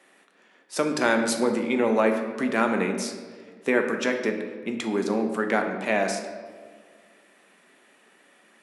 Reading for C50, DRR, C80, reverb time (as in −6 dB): 6.5 dB, 4.0 dB, 8.0 dB, 1.6 s